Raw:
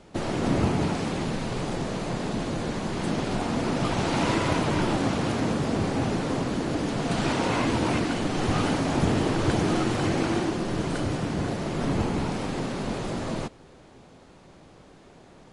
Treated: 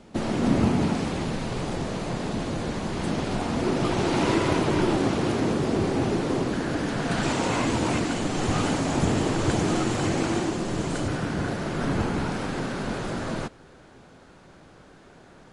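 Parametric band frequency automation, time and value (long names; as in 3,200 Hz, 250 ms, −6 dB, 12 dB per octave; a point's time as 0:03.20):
parametric band +7 dB 0.42 octaves
230 Hz
from 0:01.04 69 Hz
from 0:03.62 370 Hz
from 0:06.53 1,600 Hz
from 0:07.23 7,300 Hz
from 0:11.08 1,500 Hz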